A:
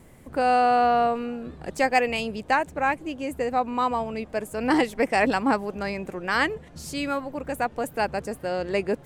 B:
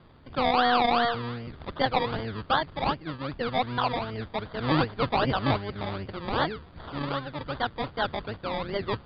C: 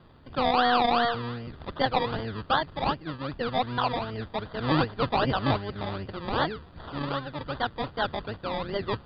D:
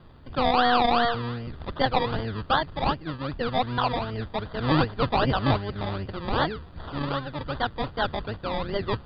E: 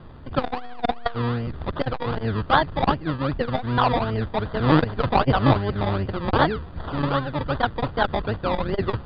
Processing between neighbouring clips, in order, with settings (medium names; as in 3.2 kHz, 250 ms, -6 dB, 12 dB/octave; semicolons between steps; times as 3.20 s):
octave divider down 1 oct, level +2 dB; decimation with a swept rate 24×, swing 60% 2.6 Hz; rippled Chebyshev low-pass 4.8 kHz, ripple 6 dB
band-stop 2.2 kHz, Q 11
bass shelf 73 Hz +8.5 dB; trim +1.5 dB
low-pass 2.5 kHz 6 dB/octave; transformer saturation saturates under 360 Hz; trim +7.5 dB